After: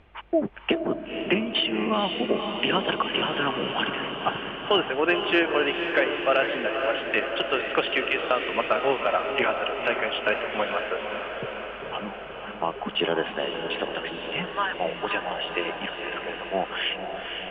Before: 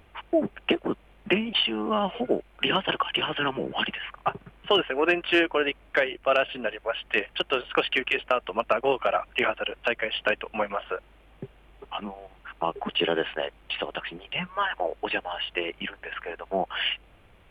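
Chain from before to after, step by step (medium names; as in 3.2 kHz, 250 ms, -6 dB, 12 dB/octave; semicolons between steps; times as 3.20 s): low-pass 4.2 kHz 12 dB/octave; on a send: echo that smears into a reverb 503 ms, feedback 68%, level -6 dB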